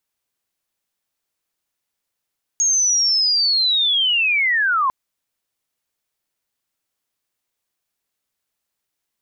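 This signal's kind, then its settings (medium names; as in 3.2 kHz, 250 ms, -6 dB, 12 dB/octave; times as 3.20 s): sweep linear 6.6 kHz -> 1 kHz -14 dBFS -> -15 dBFS 2.30 s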